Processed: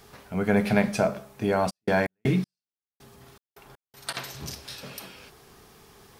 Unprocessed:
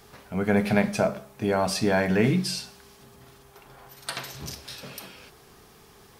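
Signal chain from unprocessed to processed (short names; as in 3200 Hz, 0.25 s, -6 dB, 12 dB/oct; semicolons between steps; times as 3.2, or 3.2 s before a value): 1.69–4.13 step gate ".x...xx.x.x" 80 bpm -60 dB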